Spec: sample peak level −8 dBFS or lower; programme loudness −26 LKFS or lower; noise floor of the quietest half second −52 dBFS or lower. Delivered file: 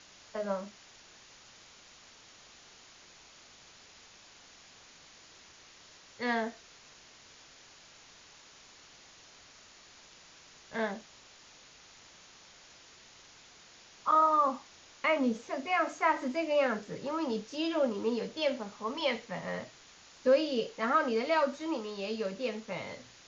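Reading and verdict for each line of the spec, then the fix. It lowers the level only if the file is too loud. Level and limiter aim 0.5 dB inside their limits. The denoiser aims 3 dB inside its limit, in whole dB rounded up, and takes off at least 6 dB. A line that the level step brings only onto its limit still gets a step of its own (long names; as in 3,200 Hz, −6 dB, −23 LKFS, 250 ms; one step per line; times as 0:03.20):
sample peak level −15.5 dBFS: in spec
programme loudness −32.0 LKFS: in spec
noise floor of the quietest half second −56 dBFS: in spec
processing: no processing needed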